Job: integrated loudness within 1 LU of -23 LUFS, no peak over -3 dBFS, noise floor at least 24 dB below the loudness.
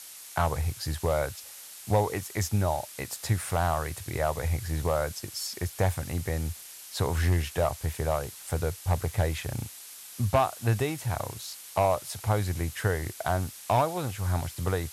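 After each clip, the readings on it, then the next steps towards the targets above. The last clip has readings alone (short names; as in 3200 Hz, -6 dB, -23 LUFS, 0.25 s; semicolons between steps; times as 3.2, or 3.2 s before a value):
clipped 0.3%; flat tops at -16.0 dBFS; noise floor -46 dBFS; noise floor target -54 dBFS; loudness -29.5 LUFS; peak -16.0 dBFS; loudness target -23.0 LUFS
-> clip repair -16 dBFS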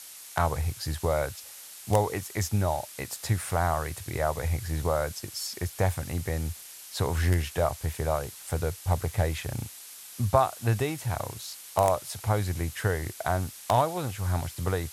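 clipped 0.0%; noise floor -46 dBFS; noise floor target -54 dBFS
-> noise print and reduce 8 dB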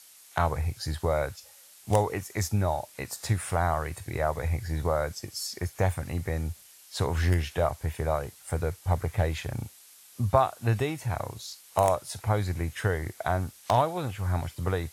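noise floor -54 dBFS; loudness -29.5 LUFS; peak -7.0 dBFS; loudness target -23.0 LUFS
-> gain +6.5 dB; limiter -3 dBFS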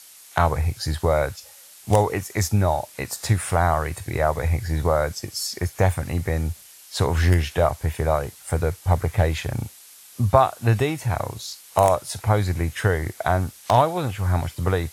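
loudness -23.0 LUFS; peak -3.0 dBFS; noise floor -47 dBFS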